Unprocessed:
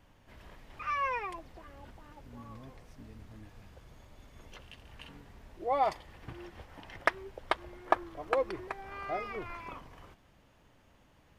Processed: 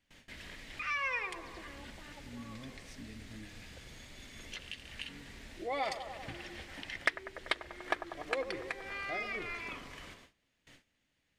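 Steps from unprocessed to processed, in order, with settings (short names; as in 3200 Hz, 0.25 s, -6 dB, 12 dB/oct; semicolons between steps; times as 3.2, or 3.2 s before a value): high shelf 2100 Hz +2.5 dB; notches 50/100/150/200/250/300/350/400/450 Hz; band-limited delay 97 ms, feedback 65%, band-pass 660 Hz, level -10 dB; gate with hold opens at -50 dBFS; graphic EQ 250/1000/2000/4000/8000 Hz +6/-6/+10/+8/+9 dB; compressor 1.5:1, threshold -47 dBFS, peak gain reduction 12 dB; gain +1 dB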